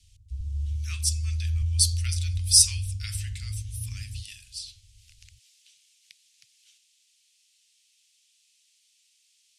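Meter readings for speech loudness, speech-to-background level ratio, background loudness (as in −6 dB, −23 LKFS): −24.0 LKFS, 8.0 dB, −32.0 LKFS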